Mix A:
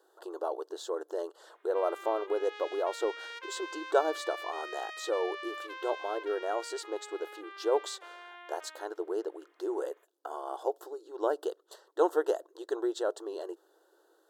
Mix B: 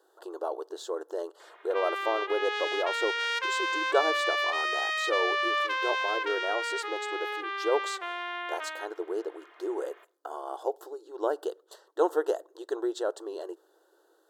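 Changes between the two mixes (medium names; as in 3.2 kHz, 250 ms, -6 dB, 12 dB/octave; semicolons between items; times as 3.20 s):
background +11.5 dB; reverb: on, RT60 0.50 s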